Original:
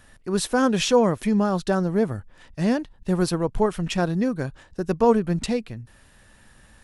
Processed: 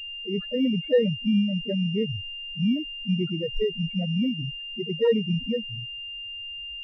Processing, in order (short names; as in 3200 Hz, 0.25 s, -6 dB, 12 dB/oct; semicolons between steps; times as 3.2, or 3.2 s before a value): harmoniser +3 st -8 dB; loudest bins only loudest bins 2; pulse-width modulation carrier 2800 Hz